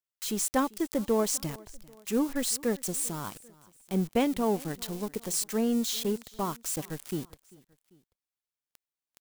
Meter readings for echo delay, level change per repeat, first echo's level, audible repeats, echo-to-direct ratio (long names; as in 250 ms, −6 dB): 394 ms, −6.0 dB, −23.0 dB, 2, −22.0 dB